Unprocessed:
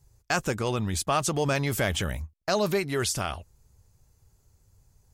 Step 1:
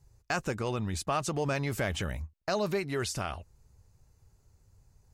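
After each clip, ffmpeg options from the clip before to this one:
-filter_complex "[0:a]highshelf=f=7600:g=-9,bandreject=f=3300:w=13,asplit=2[s0][s1];[s1]acompressor=threshold=0.0178:ratio=6,volume=1[s2];[s0][s2]amix=inputs=2:normalize=0,volume=0.473"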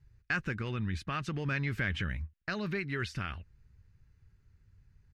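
-af "firequalizer=gain_entry='entry(180,0);entry(670,-16);entry(1600,4);entry(7400,-19)':delay=0.05:min_phase=1"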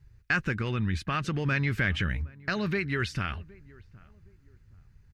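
-filter_complex "[0:a]asplit=2[s0][s1];[s1]adelay=766,lowpass=f=990:p=1,volume=0.0794,asplit=2[s2][s3];[s3]adelay=766,lowpass=f=990:p=1,volume=0.33[s4];[s0][s2][s4]amix=inputs=3:normalize=0,volume=1.88"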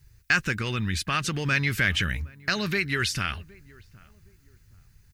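-af "crystalizer=i=5:c=0"

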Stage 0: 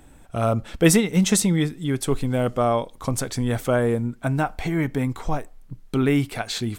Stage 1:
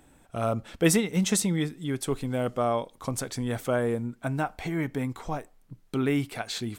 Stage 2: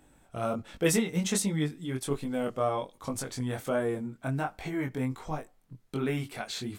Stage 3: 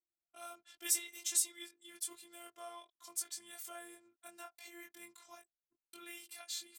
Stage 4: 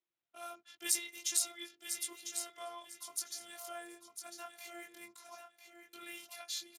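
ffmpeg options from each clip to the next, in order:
-af "lowshelf=f=71:g=-10.5,volume=0.562"
-af "flanger=delay=19.5:depth=4:speed=1.3"
-af "anlmdn=0.00398,afftfilt=real='hypot(re,im)*cos(PI*b)':imag='0':win_size=512:overlap=0.75,aderivative,volume=1.33"
-af "aecho=1:1:1000|2000|3000:0.398|0.0876|0.0193,volume=1.41" -ar 32000 -c:a libspeex -b:a 36k

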